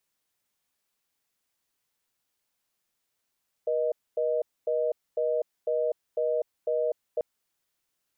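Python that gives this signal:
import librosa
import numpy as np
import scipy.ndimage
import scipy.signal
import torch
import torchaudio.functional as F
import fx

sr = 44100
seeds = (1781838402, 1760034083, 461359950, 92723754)

y = fx.call_progress(sr, length_s=3.54, kind='reorder tone', level_db=-26.5)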